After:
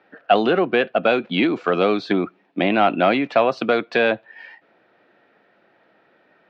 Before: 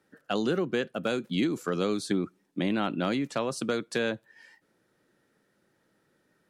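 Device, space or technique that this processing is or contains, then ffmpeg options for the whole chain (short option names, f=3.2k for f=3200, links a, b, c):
overdrive pedal into a guitar cabinet: -filter_complex "[0:a]asplit=2[a][b];[b]highpass=f=720:p=1,volume=10dB,asoftclip=type=tanh:threshold=-15dB[c];[a][c]amix=inputs=2:normalize=0,lowpass=f=2.1k:p=1,volume=-6dB,highpass=100,equalizer=f=150:t=q:w=4:g=-4,equalizer=f=700:t=q:w=4:g=10,equalizer=f=2.5k:t=q:w=4:g=6,lowpass=f=4.1k:w=0.5412,lowpass=f=4.1k:w=1.3066,volume=9dB"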